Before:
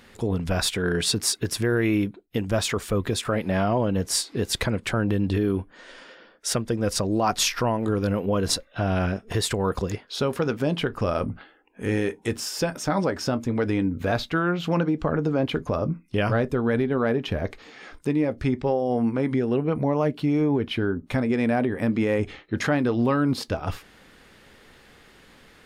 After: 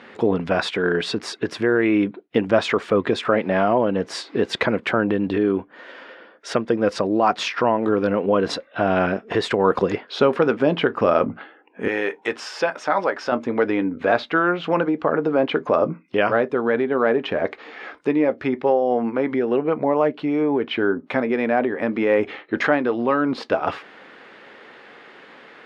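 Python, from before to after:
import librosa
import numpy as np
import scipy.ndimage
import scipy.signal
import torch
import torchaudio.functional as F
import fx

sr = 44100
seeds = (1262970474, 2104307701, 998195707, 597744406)

y = fx.rider(x, sr, range_db=10, speed_s=0.5)
y = fx.bandpass_edges(y, sr, low_hz=fx.steps((0.0, 260.0), (11.88, 610.0), (13.32, 350.0)), high_hz=2500.0)
y = F.gain(torch.from_numpy(y), 7.5).numpy()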